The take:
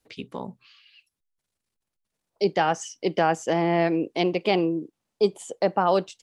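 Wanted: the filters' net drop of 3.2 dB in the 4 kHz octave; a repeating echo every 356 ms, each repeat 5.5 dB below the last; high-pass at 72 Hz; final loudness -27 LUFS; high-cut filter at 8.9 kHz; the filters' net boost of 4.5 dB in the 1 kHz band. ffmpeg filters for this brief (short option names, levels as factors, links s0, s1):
-af "highpass=72,lowpass=8900,equalizer=f=1000:t=o:g=6.5,equalizer=f=4000:t=o:g=-5,aecho=1:1:356|712|1068|1424|1780|2136|2492:0.531|0.281|0.149|0.079|0.0419|0.0222|0.0118,volume=0.531"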